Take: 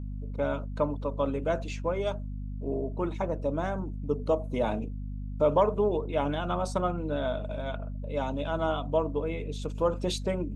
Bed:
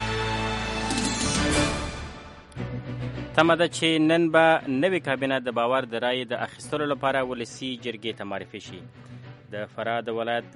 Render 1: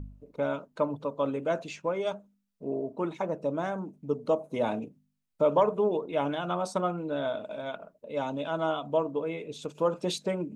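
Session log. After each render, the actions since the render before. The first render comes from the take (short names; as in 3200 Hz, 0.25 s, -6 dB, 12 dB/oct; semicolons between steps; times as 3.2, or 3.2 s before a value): de-hum 50 Hz, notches 5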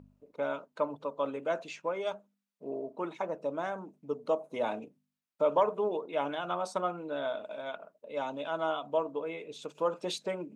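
HPF 580 Hz 6 dB/oct; high shelf 4300 Hz -5.5 dB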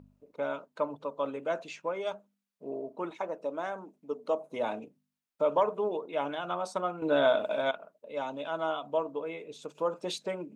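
3.1–4.35 bell 120 Hz -15 dB 0.81 oct; 7.02–7.71 gain +10 dB; 9.37–10.05 dynamic EQ 2900 Hz, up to -6 dB, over -53 dBFS, Q 0.99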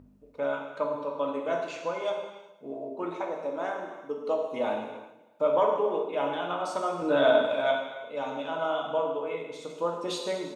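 feedback echo 0.158 s, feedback 57%, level -21 dB; non-linear reverb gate 0.43 s falling, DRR 0 dB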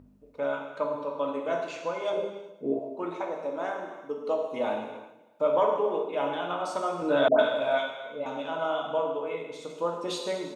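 2.13–2.79 resonant low shelf 600 Hz +9 dB, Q 1.5; 7.28–8.26 dispersion highs, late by 0.115 s, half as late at 950 Hz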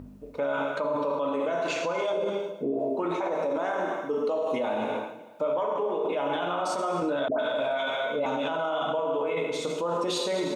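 in parallel at +3 dB: negative-ratio compressor -36 dBFS, ratio -1; on the sum: limiter -20 dBFS, peak gain reduction 10 dB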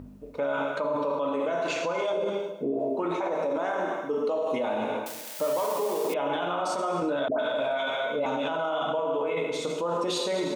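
5.06–6.14 switching spikes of -26 dBFS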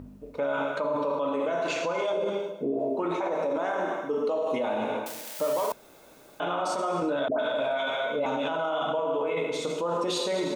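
5.72–6.4 room tone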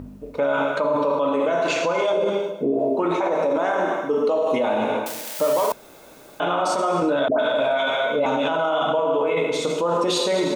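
gain +7 dB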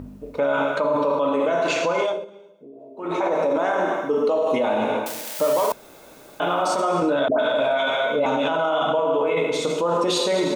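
2.02–3.21 dip -22 dB, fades 0.25 s; 6.41–6.81 sample gate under -43.5 dBFS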